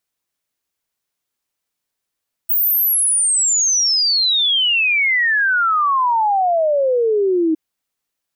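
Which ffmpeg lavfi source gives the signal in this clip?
ffmpeg -f lavfi -i "aevalsrc='0.224*clip(min(t,5.06-t)/0.01,0,1)*sin(2*PI*16000*5.06/log(310/16000)*(exp(log(310/16000)*t/5.06)-1))':duration=5.06:sample_rate=44100" out.wav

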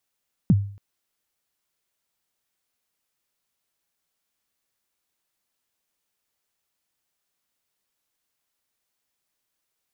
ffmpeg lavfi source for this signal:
ffmpeg -f lavfi -i "aevalsrc='0.316*pow(10,-3*t/0.48)*sin(2*PI*(230*0.039/log(100/230)*(exp(log(100/230)*min(t,0.039)/0.039)-1)+100*max(t-0.039,0)))':duration=0.28:sample_rate=44100" out.wav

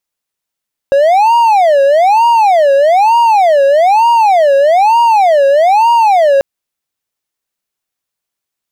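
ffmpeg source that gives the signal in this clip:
ffmpeg -f lavfi -i "aevalsrc='0.708*(1-4*abs(mod((746*t-197/(2*PI*1.1)*sin(2*PI*1.1*t))+0.25,1)-0.5))':duration=5.49:sample_rate=44100" out.wav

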